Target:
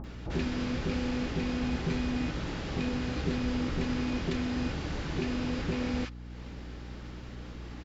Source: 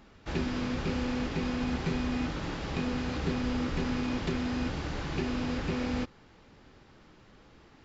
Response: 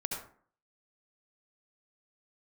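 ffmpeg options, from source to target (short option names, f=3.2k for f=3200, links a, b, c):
-filter_complex "[0:a]acrossover=split=1000[a][b];[b]adelay=40[c];[a][c]amix=inputs=2:normalize=0,acompressor=mode=upward:threshold=-36dB:ratio=2.5,aeval=exprs='val(0)+0.00794*(sin(2*PI*60*n/s)+sin(2*PI*2*60*n/s)/2+sin(2*PI*3*60*n/s)/3+sin(2*PI*4*60*n/s)/4+sin(2*PI*5*60*n/s)/5)':c=same"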